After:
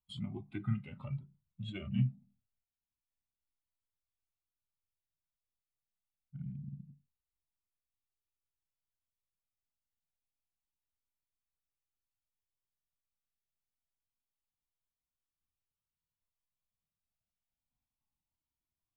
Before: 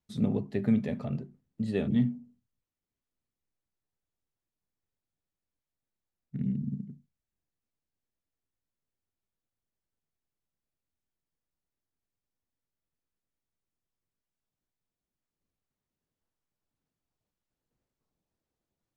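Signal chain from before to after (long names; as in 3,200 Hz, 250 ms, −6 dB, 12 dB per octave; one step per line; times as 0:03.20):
noise reduction from a noise print of the clip's start 12 dB
in parallel at +0.5 dB: downward compressor, threshold −39 dBFS, peak gain reduction 16.5 dB
on the sum: formants moved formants −3 semitones
phaser with its sweep stopped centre 1,700 Hz, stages 6
flanger whose copies keep moving one way rising 0.27 Hz
level +2 dB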